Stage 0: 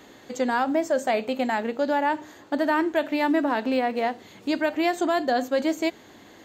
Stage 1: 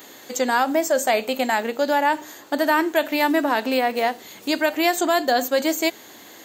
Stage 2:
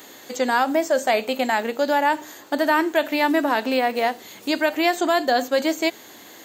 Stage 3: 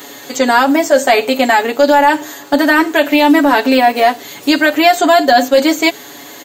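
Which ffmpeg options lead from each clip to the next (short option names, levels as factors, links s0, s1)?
-af "aemphasis=mode=production:type=bsi,volume=1.68"
-filter_complex "[0:a]acrossover=split=5600[s0][s1];[s1]acompressor=threshold=0.0112:ratio=4:attack=1:release=60[s2];[s0][s2]amix=inputs=2:normalize=0"
-af "aecho=1:1:7.1:0.84,apsyclip=3.16,volume=0.841"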